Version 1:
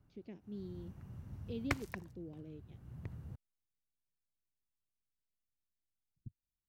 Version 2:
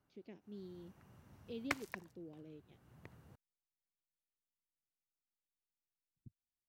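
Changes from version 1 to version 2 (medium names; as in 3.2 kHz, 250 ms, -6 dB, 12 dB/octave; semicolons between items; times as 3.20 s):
background: add bass shelf 230 Hz -7.5 dB; master: add bass shelf 200 Hz -11.5 dB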